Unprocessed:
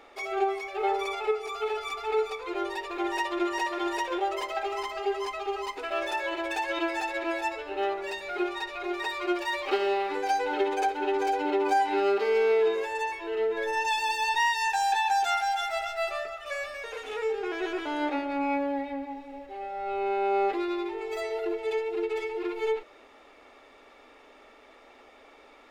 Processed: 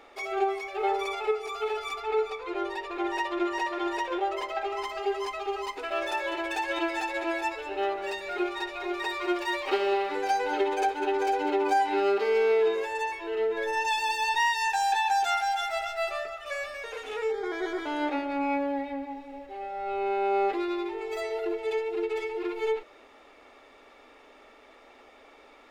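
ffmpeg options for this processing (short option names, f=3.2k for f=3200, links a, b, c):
-filter_complex "[0:a]asettb=1/sr,asplit=3[a][b][c];[a]atrim=end=2.004[d];[b]atrim=start=2:end=4.83,asetpts=PTS-STARTPTS,afade=t=in:d=0.004:c=qsin,afade=t=out:st=2.826:d=0.004:c=qsin,highshelf=f=6.1k:g=-9.5[e];[c]atrim=start=4.826[f];[d][e]acrossfade=d=0.004:c1=hsin:c2=qsin[g];[g][f]acrossfade=d=0.004:c1=qsin:c2=hsin,asettb=1/sr,asplit=3[h][i][j];[h]atrim=end=5.864[k];[i]atrim=start=5.86:end=11.63,asetpts=PTS-STARTPTS,afade=t=in:d=0.004:c=qsin,afade=t=out:st=5.766:d=0.004:c=qsin,aecho=1:1:199:0.237,atrim=end_sample=254457[l];[j]atrim=start=11.626[m];[k][l]acrossfade=d=0.004:c1=hsin:c2=qsin[n];[n][m]acrossfade=d=0.004:c1=qsin:c2=hsin,asettb=1/sr,asplit=3[o][p][q];[o]atrim=end=17.314[r];[p]atrim=start=17.31:end=17.86,asetpts=PTS-STARTPTS,afade=t=in:d=0.004:c=qsin,afade=t=out:st=0.546:d=0.004:c=qsin,asuperstop=centerf=2700:order=8:qfactor=4.1[s];[q]atrim=start=17.856[t];[r][s]acrossfade=d=0.004:c1=hsin:c2=qsin[u];[u][t]acrossfade=d=0.004:c1=qsin:c2=hsin"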